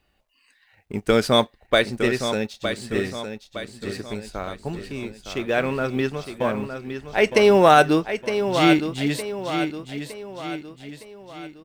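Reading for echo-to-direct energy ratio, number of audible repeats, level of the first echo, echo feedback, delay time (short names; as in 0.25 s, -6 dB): -7.5 dB, 4, -8.5 dB, 46%, 0.912 s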